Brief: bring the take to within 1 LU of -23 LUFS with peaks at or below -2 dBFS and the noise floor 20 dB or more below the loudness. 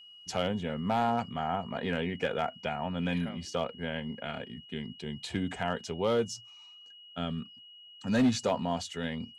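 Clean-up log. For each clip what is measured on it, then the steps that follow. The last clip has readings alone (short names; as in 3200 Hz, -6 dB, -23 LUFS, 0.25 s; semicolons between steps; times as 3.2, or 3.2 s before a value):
clipped 0.4%; flat tops at -19.5 dBFS; steady tone 2900 Hz; tone level -50 dBFS; loudness -33.0 LUFS; peak -19.5 dBFS; loudness target -23.0 LUFS
-> clip repair -19.5 dBFS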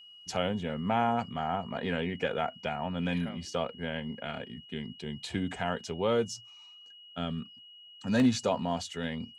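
clipped 0.0%; steady tone 2900 Hz; tone level -50 dBFS
-> notch 2900 Hz, Q 30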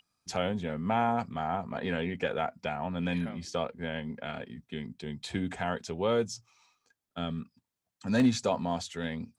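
steady tone none; loudness -32.5 LUFS; peak -14.0 dBFS; loudness target -23.0 LUFS
-> gain +9.5 dB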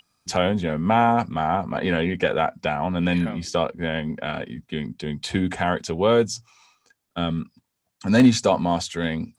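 loudness -23.0 LUFS; peak -4.5 dBFS; noise floor -77 dBFS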